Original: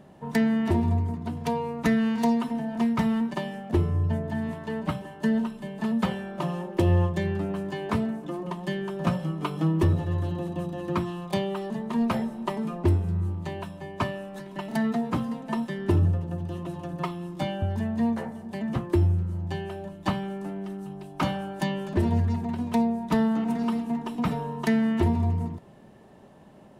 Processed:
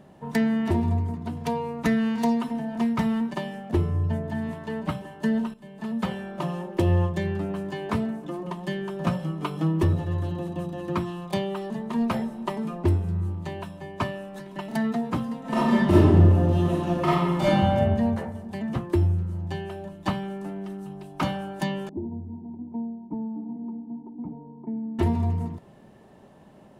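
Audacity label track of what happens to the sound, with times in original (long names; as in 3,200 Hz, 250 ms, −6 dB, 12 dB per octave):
5.540000	6.230000	fade in, from −12.5 dB
15.400000	17.710000	thrown reverb, RT60 1.5 s, DRR −10 dB
21.890000	24.990000	formant resonators in series u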